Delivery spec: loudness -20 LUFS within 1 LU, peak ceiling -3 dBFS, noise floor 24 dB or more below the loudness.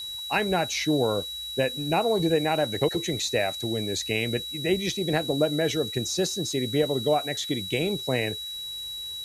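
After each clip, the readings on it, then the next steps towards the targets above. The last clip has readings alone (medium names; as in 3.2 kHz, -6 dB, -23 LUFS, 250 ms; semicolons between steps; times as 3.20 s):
steady tone 3.9 kHz; tone level -33 dBFS; noise floor -36 dBFS; noise floor target -50 dBFS; loudness -26.0 LUFS; peak level -10.0 dBFS; loudness target -20.0 LUFS
-> band-stop 3.9 kHz, Q 30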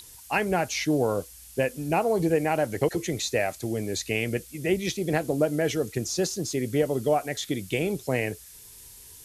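steady tone not found; noise floor -48 dBFS; noise floor target -51 dBFS
-> noise reduction 6 dB, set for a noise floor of -48 dBFS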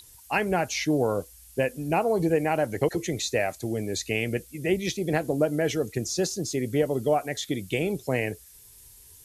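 noise floor -51 dBFS; loudness -27.0 LUFS; peak level -10.5 dBFS; loudness target -20.0 LUFS
-> trim +7 dB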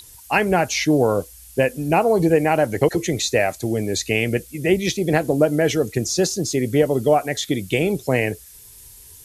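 loudness -20.0 LUFS; peak level -3.5 dBFS; noise floor -44 dBFS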